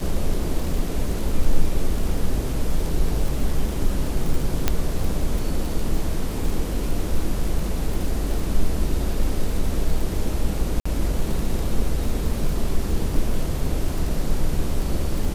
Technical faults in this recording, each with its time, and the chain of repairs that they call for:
crackle 39/s -26 dBFS
4.68 pop -4 dBFS
10.8–10.86 gap 55 ms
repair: de-click; interpolate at 10.8, 55 ms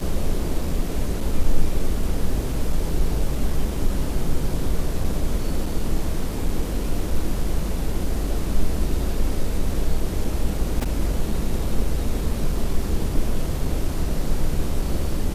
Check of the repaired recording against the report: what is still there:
none

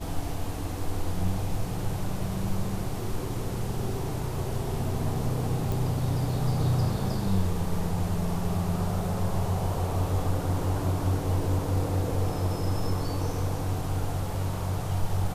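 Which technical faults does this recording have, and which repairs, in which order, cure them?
5.72 pop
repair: de-click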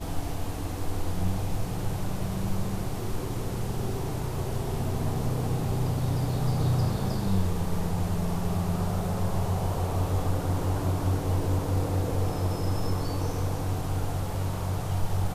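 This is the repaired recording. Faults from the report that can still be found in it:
none

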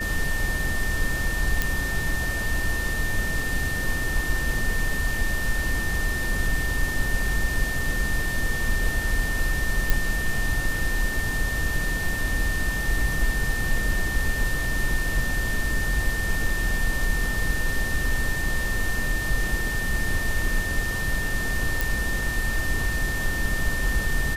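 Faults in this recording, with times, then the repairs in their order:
tone 1800 Hz -28 dBFS
1.62 pop
9.9 pop
21.81 pop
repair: de-click; notch 1800 Hz, Q 30

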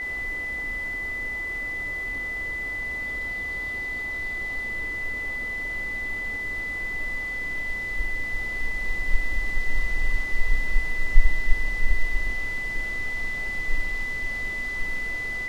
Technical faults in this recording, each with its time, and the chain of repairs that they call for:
tone 2000 Hz -28 dBFS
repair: notch 2000 Hz, Q 30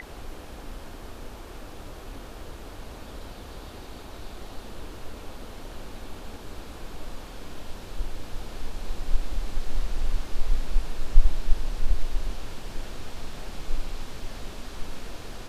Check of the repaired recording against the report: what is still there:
none

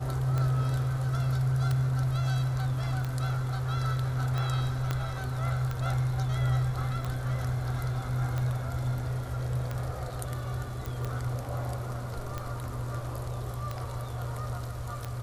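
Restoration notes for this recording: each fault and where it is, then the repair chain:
tick 45 rpm -20 dBFS
4.91 pop -16 dBFS
10.86 pop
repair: de-click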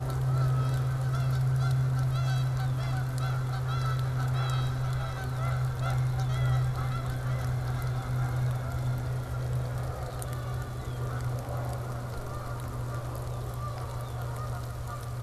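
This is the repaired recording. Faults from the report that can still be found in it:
4.91 pop

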